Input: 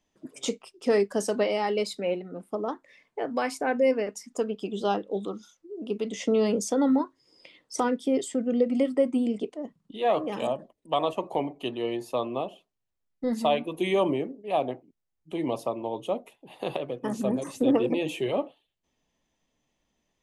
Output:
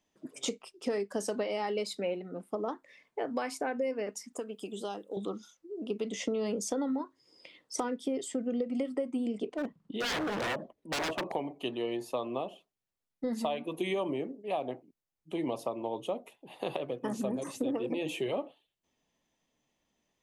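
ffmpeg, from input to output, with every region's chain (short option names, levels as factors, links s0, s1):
-filter_complex "[0:a]asettb=1/sr,asplit=3[s0][s1][s2];[s0]atrim=end=4.334[s3];[s1]atrim=start=4.33:end=5.17,asetpts=PTS-STARTPTS,afade=t=in:d=0.004:c=qsin,afade=t=out:st=0.836:d=0.004:c=qsin,highpass=160,highshelf=f=6900:t=q:w=1.5:g=9,acrossover=split=1300|3400[s4][s5][s6];[s4]acompressor=threshold=0.0178:ratio=4[s7];[s5]acompressor=threshold=0.00224:ratio=4[s8];[s6]acompressor=threshold=0.00447:ratio=4[s9];[s7][s8][s9]amix=inputs=3:normalize=0[s10];[s2]atrim=start=5.166[s11];[s3][s10]acrossfade=d=0.004:c1=hsin:c2=qsin[s12];[s12][s11]acrossfade=d=0.004:c1=qsin:c2=hsin,asettb=1/sr,asplit=3[s13][s14][s15];[s13]atrim=end=9.464[s16];[s14]atrim=start=9.46:end=11.32,asetpts=PTS-STARTPTS,afade=t=in:d=0.004:c=qsin,afade=t=out:st=1.856:d=0.004:c=qsin,lowpass=f=2200:p=1,acontrast=51,aeval=exprs='0.0596*(abs(mod(val(0)/0.0596+3,4)-2)-1)':c=same[s17];[s15]atrim=start=11.316[s18];[s16][s17]acrossfade=d=0.004:c1=hsin:c2=qsin[s19];[s19][s18]acrossfade=d=0.004:c1=qsin:c2=hsin,lowshelf=f=66:g=-10,acompressor=threshold=0.0447:ratio=10,volume=0.841"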